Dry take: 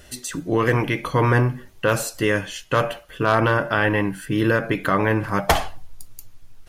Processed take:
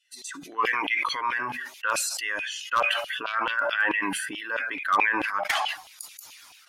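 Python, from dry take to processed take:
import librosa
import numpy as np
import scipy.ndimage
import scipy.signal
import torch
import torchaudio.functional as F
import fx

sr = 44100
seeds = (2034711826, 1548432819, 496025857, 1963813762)

y = fx.bin_expand(x, sr, power=1.5)
y = fx.recorder_agc(y, sr, target_db=-12.5, rise_db_per_s=6.8, max_gain_db=30)
y = scipy.signal.sosfilt(scipy.signal.butter(2, 11000.0, 'lowpass', fs=sr, output='sos'), y)
y = fx.peak_eq(y, sr, hz=270.0, db=8.5, octaves=0.67)
y = fx.filter_lfo_highpass(y, sr, shape='saw_down', hz=4.6, low_hz=770.0, high_hz=3000.0, q=3.5)
y = 10.0 ** (-6.5 / 20.0) * (np.abs((y / 10.0 ** (-6.5 / 20.0) + 3.0) % 4.0 - 2.0) - 1.0)
y = fx.sustainer(y, sr, db_per_s=28.0)
y = F.gain(torch.from_numpy(y), -8.0).numpy()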